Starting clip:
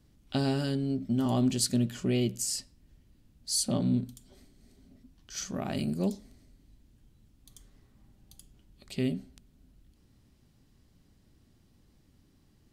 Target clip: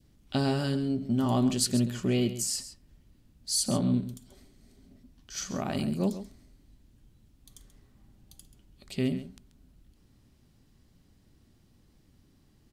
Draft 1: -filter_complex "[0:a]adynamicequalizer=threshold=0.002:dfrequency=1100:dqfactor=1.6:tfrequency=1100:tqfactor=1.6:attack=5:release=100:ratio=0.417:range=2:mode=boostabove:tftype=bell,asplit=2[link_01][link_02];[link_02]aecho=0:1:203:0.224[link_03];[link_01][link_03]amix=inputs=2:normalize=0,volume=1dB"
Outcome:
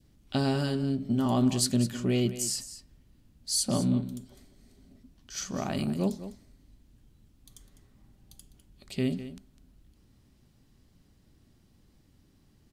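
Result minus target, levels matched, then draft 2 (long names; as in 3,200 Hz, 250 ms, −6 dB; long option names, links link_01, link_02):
echo 69 ms late
-filter_complex "[0:a]adynamicequalizer=threshold=0.002:dfrequency=1100:dqfactor=1.6:tfrequency=1100:tqfactor=1.6:attack=5:release=100:ratio=0.417:range=2:mode=boostabove:tftype=bell,asplit=2[link_01][link_02];[link_02]aecho=0:1:134:0.224[link_03];[link_01][link_03]amix=inputs=2:normalize=0,volume=1dB"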